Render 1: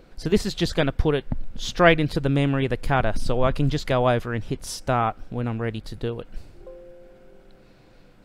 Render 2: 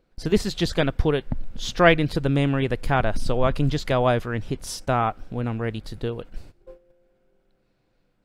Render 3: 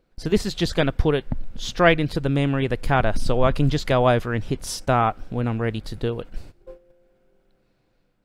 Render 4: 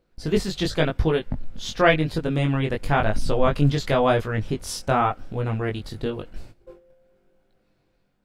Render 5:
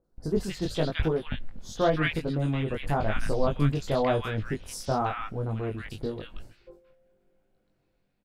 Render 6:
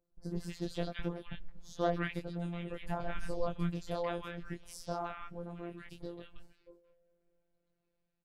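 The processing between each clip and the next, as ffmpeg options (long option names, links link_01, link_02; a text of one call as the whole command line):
ffmpeg -i in.wav -af "agate=range=-16dB:threshold=-39dB:ratio=16:detection=peak" out.wav
ffmpeg -i in.wav -af "dynaudnorm=framelen=290:gausssize=5:maxgain=3dB" out.wav
ffmpeg -i in.wav -af "flanger=delay=18.5:depth=2.9:speed=0.93,volume=2dB" out.wav
ffmpeg -i in.wav -filter_complex "[0:a]acrossover=split=1300|4600[link_01][link_02][link_03];[link_03]adelay=40[link_04];[link_02]adelay=170[link_05];[link_01][link_05][link_04]amix=inputs=3:normalize=0,volume=-5dB" out.wav
ffmpeg -i in.wav -af "afftfilt=real='hypot(re,im)*cos(PI*b)':imag='0':win_size=1024:overlap=0.75,volume=-7dB" out.wav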